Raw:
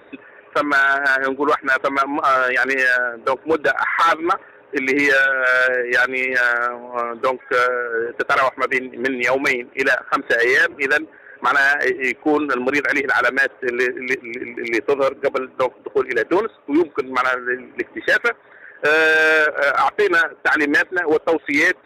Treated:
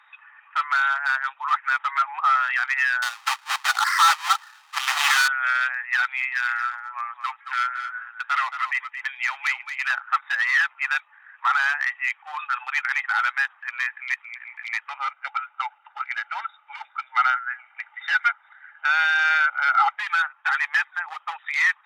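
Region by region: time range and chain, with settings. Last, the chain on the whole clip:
3.02–5.28 s: square wave that keeps the level + loudspeaker Doppler distortion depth 0.89 ms
6.25–9.90 s: high-pass 1.1 kHz 6 dB/octave + delay 224 ms -9.5 dB
14.89–19.98 s: distance through air 54 m + comb 1.4 ms, depth 72%
whole clip: Chebyshev high-pass 840 Hz, order 6; treble shelf 10 kHz -11 dB; comb 1.6 ms, depth 30%; trim -3.5 dB

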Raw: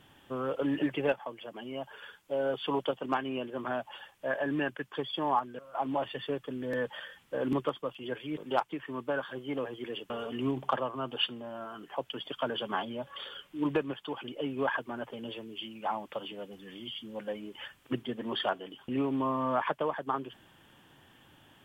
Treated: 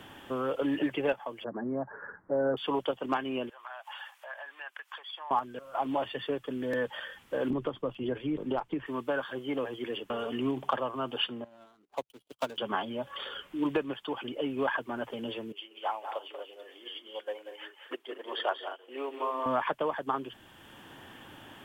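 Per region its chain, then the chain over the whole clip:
1.44–2.57 s: steep low-pass 1.8 kHz 72 dB/octave + peaking EQ 160 Hz +9 dB 2 oct
3.49–5.31 s: compression 3:1, threshold -45 dBFS + high-pass 810 Hz 24 dB/octave
7.50–8.86 s: tilt EQ -3.5 dB/octave + compression, threshold -27 dBFS
11.44–12.58 s: median filter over 25 samples + treble shelf 2.8 kHz +11.5 dB + upward expansion 2.5:1, over -53 dBFS
15.52–19.46 s: inverse Chebyshev high-pass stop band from 190 Hz + multi-tap echo 186/227 ms -7/-10.5 dB + upward expansion, over -50 dBFS
whole clip: peaking EQ 150 Hz -5.5 dB 0.51 oct; three bands compressed up and down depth 40%; trim +1.5 dB

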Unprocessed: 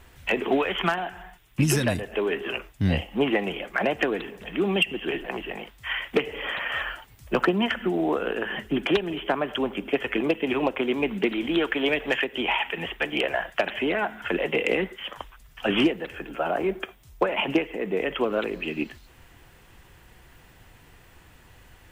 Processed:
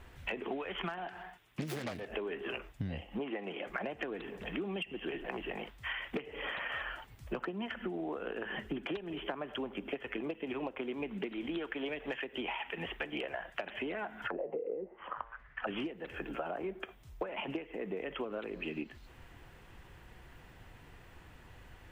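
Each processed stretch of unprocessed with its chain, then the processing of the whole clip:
1.08–2.10 s: self-modulated delay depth 0.38 ms + high-pass 220 Hz 6 dB/octave
3.19–3.67 s: high-pass 200 Hz + treble shelf 7.8 kHz -10.5 dB
14.27–15.67 s: bass shelf 430 Hz -6.5 dB + de-hum 114.5 Hz, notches 33 + touch-sensitive low-pass 470–2000 Hz down, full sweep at -23.5 dBFS
whole clip: treble shelf 4.6 kHz -10 dB; compression 10:1, threshold -33 dBFS; trim -2 dB

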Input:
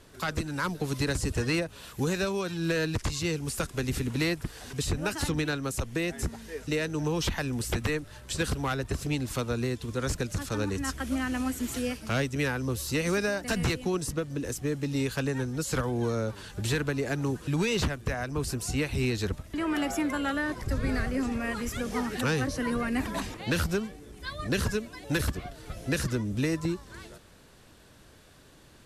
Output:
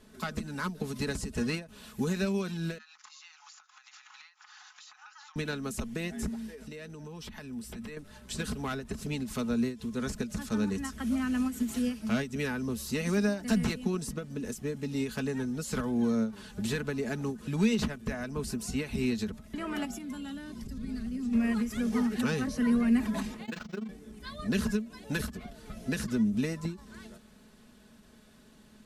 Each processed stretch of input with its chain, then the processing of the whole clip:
2.78–5.36 s: brick-wall FIR band-pass 720–7300 Hz + peaking EQ 1.3 kHz +8 dB 0.43 oct + compression 16:1, threshold -43 dBFS
6.33–7.97 s: band-stop 6.6 kHz, Q 14 + compression 4:1, threshold -38 dBFS
19.85–21.33 s: high-order bell 980 Hz -9.5 dB 2.7 oct + compression 4:1, threshold -33 dBFS
23.45–23.89 s: high-pass 450 Hz 6 dB/octave + AM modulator 24 Hz, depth 90% + decimation joined by straight lines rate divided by 4×
whole clip: peaking EQ 220 Hz +12.5 dB 0.38 oct; comb 4.7 ms, depth 47%; endings held to a fixed fall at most 170 dB/s; trim -5.5 dB

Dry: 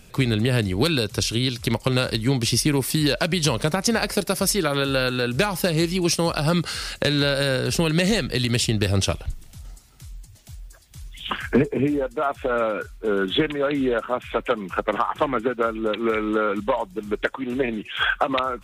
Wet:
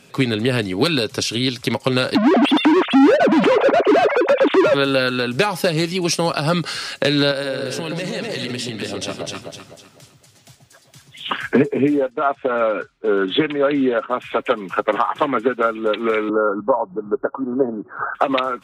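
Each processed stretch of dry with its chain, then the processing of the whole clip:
2.15–4.74 s: formants replaced by sine waves + FFT filter 230 Hz 0 dB, 1.9 kHz -17 dB, 11 kHz +3 dB + overdrive pedal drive 42 dB, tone 1.5 kHz, clips at -10.5 dBFS
7.31–11.23 s: high-pass 120 Hz + echo whose repeats swap between lows and highs 126 ms, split 900 Hz, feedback 61%, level -3 dB + compression, threshold -24 dBFS
12.10–14.11 s: gate -34 dBFS, range -8 dB + distance through air 86 m
16.29–18.15 s: steep low-pass 1.4 kHz 72 dB/octave + upward compressor, threshold -27 dBFS
whole clip: high-pass 190 Hz 12 dB/octave; treble shelf 9.7 kHz -11.5 dB; comb 7.3 ms, depth 33%; trim +4 dB

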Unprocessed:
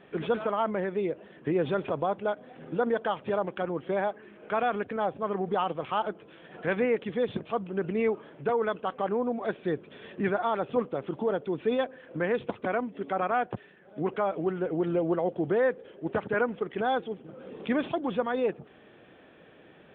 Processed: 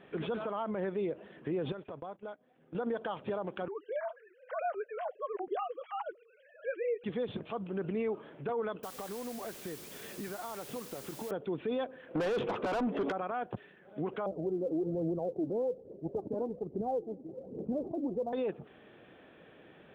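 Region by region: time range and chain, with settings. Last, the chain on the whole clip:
1.72–2.75 s: gate -37 dBFS, range -18 dB + compression 2.5:1, threshold -43 dBFS
3.68–7.04 s: formants replaced by sine waves + flange 1.2 Hz, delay 0.1 ms, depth 6.8 ms, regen -52%
8.83–11.31 s: compression 10:1, threshold -35 dBFS + word length cut 8-bit, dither triangular
12.15–13.12 s: treble shelf 2.5 kHz -9.5 dB + overdrive pedal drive 29 dB, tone 2.2 kHz, clips at -16.5 dBFS
14.26–18.33 s: inverse Chebyshev low-pass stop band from 1.7 kHz, stop band 50 dB + phaser 1.2 Hz, delay 3.9 ms, feedback 61%
whole clip: dynamic bell 2 kHz, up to -5 dB, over -47 dBFS, Q 2; peak limiter -24.5 dBFS; trim -2 dB

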